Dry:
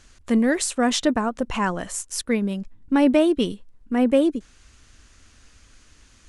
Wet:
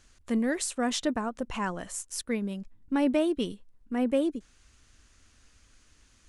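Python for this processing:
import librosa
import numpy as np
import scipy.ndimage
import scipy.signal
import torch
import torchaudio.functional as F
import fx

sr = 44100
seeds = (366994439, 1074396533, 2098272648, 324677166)

y = fx.high_shelf(x, sr, hz=9900.0, db=4.0)
y = y * librosa.db_to_amplitude(-8.0)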